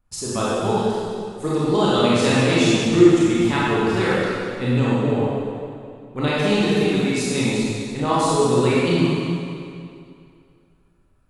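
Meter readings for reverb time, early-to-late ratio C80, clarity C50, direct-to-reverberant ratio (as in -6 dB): 2.4 s, -2.0 dB, -5.0 dB, -8.5 dB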